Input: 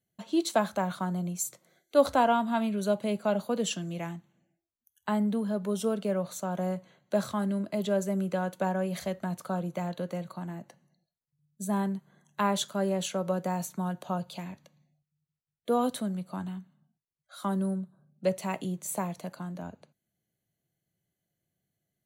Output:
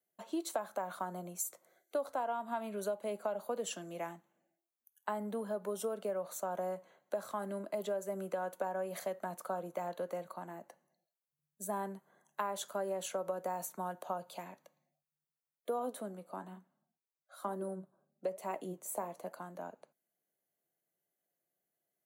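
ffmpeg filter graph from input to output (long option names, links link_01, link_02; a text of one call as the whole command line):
ffmpeg -i in.wav -filter_complex "[0:a]asettb=1/sr,asplit=3[link_01][link_02][link_03];[link_01]atrim=end=15.794[link_04];[link_02]atrim=start=15.79:end=19.34,asetpts=PTS-STARTPTS,afade=type=in:duration=0.004:curve=qsin,afade=type=out:start_time=3.546:duration=0.004:curve=qsin,equalizer=frequency=340:width=0.53:gain=5.5,flanger=delay=2.4:depth=7.7:regen=77:speed=1.1:shape=triangular[link_05];[link_03]atrim=start=19.336[link_06];[link_04][link_05]acrossfade=duration=0.004:curve1=hsin:curve2=qsin[link_07];[link_07][link_06]acrossfade=duration=0.004:curve1=qsin:curve2=hsin,highpass=500,equalizer=frequency=3800:width=0.52:gain=-12,acompressor=threshold=-35dB:ratio=10,volume=2.5dB" out.wav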